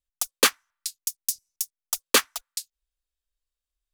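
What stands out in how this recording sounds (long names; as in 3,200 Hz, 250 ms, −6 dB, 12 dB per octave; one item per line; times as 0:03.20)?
background noise floor −91 dBFS
spectral slope 0.0 dB per octave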